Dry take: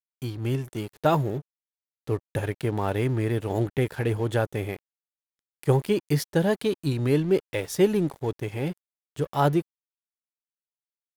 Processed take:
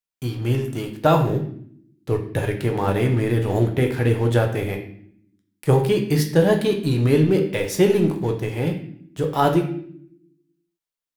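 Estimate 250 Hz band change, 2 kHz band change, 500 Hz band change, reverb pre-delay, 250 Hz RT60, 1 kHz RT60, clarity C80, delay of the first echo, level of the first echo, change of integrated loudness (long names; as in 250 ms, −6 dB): +5.5 dB, +5.0 dB, +5.5 dB, 6 ms, 1.2 s, 0.55 s, 11.5 dB, no echo audible, no echo audible, +5.5 dB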